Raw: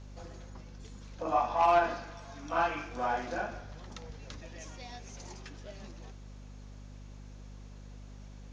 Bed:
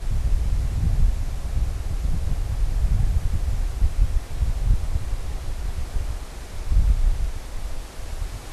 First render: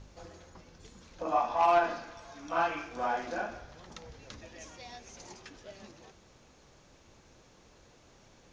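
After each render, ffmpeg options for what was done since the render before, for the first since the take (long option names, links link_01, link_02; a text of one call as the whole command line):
ffmpeg -i in.wav -af "bandreject=frequency=50:width_type=h:width=4,bandreject=frequency=100:width_type=h:width=4,bandreject=frequency=150:width_type=h:width=4,bandreject=frequency=200:width_type=h:width=4,bandreject=frequency=250:width_type=h:width=4" out.wav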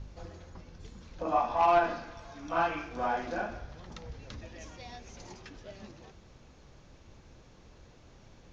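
ffmpeg -i in.wav -af "lowpass=6000,lowshelf=frequency=180:gain=9.5" out.wav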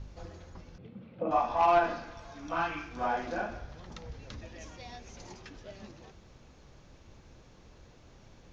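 ffmpeg -i in.wav -filter_complex "[0:a]asettb=1/sr,asplit=3[link_01][link_02][link_03];[link_01]atrim=end=0.784[link_04];[link_02]atrim=start=0.78:end=1.31,asetpts=PTS-STARTPTS,afade=type=in:duration=0.004:curve=qsin,afade=type=out:start_time=0.526:duration=0.004:curve=qsin,highpass=frequency=110:width=0.5412,highpass=frequency=110:width=1.3066,equalizer=frequency=120:width_type=q:width=4:gain=8,equalizer=frequency=210:width_type=q:width=4:gain=9,equalizer=frequency=520:width_type=q:width=4:gain=5,equalizer=frequency=1000:width_type=q:width=4:gain=-8,equalizer=frequency=1700:width_type=q:width=4:gain=-9,lowpass=frequency=2700:width=0.5412,lowpass=frequency=2700:width=1.3066[link_05];[link_03]atrim=start=1.306[link_06];[link_04][link_05]acrossfade=duration=0.004:curve1=hsin:curve2=qsin[link_07];[link_07][link_06]acrossfade=duration=0.004:curve1=qsin:curve2=hsin,asettb=1/sr,asplit=3[link_08][link_09][link_10];[link_08]atrim=end=2.554[link_11];[link_09]atrim=start=2.55:end=3.01,asetpts=PTS-STARTPTS,afade=type=in:duration=0.004:curve=qsin,afade=type=out:start_time=0.456:duration=0.004:curve=qsin,equalizer=frequency=560:width=1.5:gain=-9[link_12];[link_10]atrim=start=3.006[link_13];[link_11][link_12]acrossfade=duration=0.004:curve1=hsin:curve2=qsin[link_14];[link_14][link_13]acrossfade=duration=0.004:curve1=qsin:curve2=hsin" out.wav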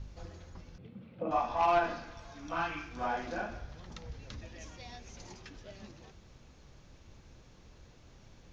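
ffmpeg -i in.wav -af "equalizer=frequency=600:width=0.4:gain=-3.5" out.wav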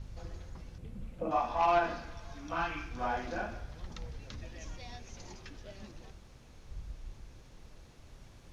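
ffmpeg -i in.wav -i bed.wav -filter_complex "[1:a]volume=-26dB[link_01];[0:a][link_01]amix=inputs=2:normalize=0" out.wav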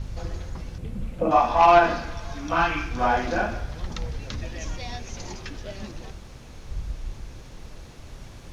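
ffmpeg -i in.wav -af "volume=12dB" out.wav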